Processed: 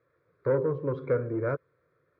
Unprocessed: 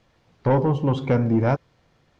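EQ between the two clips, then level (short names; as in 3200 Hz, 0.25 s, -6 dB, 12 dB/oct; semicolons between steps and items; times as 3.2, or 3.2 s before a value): speaker cabinet 180–3300 Hz, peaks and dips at 310 Hz -6 dB, 660 Hz -7 dB, 940 Hz -7 dB, 1900 Hz -4 dB; high shelf 2400 Hz -9 dB; fixed phaser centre 800 Hz, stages 6; 0.0 dB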